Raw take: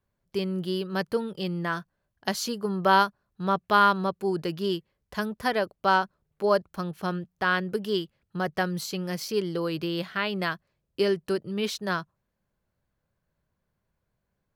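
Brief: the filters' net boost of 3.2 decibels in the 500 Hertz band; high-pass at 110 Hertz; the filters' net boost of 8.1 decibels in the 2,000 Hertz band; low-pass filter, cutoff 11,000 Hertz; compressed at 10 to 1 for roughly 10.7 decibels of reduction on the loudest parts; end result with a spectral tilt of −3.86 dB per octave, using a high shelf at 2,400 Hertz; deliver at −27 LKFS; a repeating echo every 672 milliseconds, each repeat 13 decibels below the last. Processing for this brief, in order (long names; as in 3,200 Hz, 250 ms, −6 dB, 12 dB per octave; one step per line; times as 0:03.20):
high-pass filter 110 Hz
low-pass filter 11,000 Hz
parametric band 500 Hz +3.5 dB
parametric band 2,000 Hz +9 dB
high-shelf EQ 2,400 Hz +5.5 dB
downward compressor 10 to 1, threshold −20 dBFS
repeating echo 672 ms, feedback 22%, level −13 dB
level +0.5 dB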